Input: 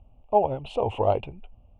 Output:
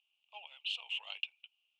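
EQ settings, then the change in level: ladder high-pass 2600 Hz, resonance 50%; air absorption 58 m; +11.5 dB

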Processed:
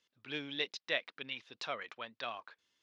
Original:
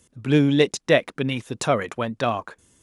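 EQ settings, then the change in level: band-pass 4900 Hz, Q 1.7; air absorption 320 m; +3.0 dB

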